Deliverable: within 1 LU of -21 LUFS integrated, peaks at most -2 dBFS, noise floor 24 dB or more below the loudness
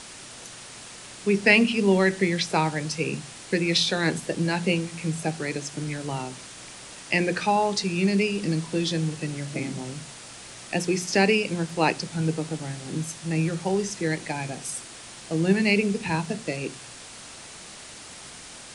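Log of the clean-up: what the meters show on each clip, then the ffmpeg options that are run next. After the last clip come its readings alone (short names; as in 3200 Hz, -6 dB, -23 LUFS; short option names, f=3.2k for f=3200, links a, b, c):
noise floor -43 dBFS; noise floor target -50 dBFS; loudness -25.5 LUFS; peak -5.5 dBFS; loudness target -21.0 LUFS
-> -af "afftdn=nr=7:nf=-43"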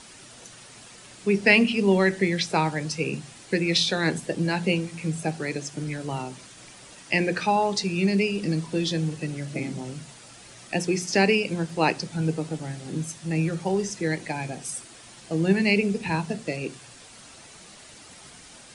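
noise floor -48 dBFS; noise floor target -50 dBFS
-> -af "afftdn=nr=6:nf=-48"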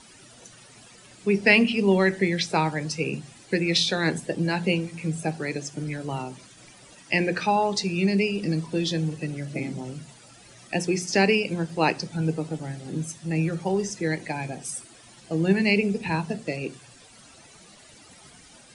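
noise floor -51 dBFS; loudness -25.5 LUFS; peak -5.5 dBFS; loudness target -21.0 LUFS
-> -af "volume=4.5dB,alimiter=limit=-2dB:level=0:latency=1"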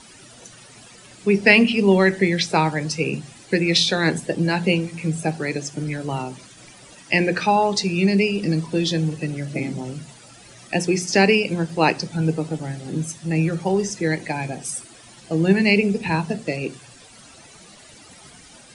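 loudness -21.0 LUFS; peak -2.0 dBFS; noise floor -47 dBFS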